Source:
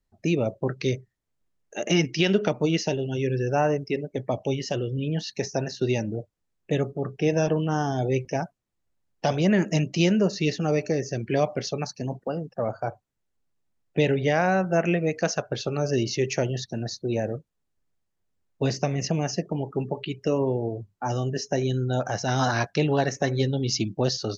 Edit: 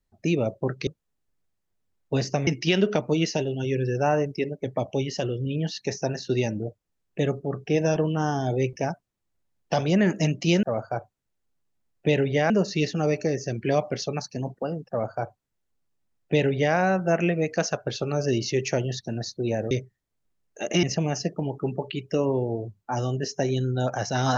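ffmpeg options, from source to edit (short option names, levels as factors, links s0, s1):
-filter_complex "[0:a]asplit=7[s0][s1][s2][s3][s4][s5][s6];[s0]atrim=end=0.872[s7];[s1]atrim=start=17.358:end=18.962[s8];[s2]atrim=start=1.988:end=10.152[s9];[s3]atrim=start=12.538:end=14.412[s10];[s4]atrim=start=10.148:end=17.362[s11];[s5]atrim=start=0.868:end=1.992[s12];[s6]atrim=start=18.958[s13];[s7][s8]acrossfade=d=0.004:c1=hsin:c2=hsin[s14];[s14][s9]acrossfade=d=0.004:c1=hsin:c2=hsin[s15];[s15][s10]acrossfade=d=0.004:c1=hsin:c2=hsin[s16];[s16][s11]acrossfade=d=0.004:c1=hsin:c2=hsin[s17];[s17][s12]acrossfade=d=0.004:c1=hsin:c2=hsin[s18];[s18][s13]acrossfade=d=0.004:c1=hsin:c2=hsin"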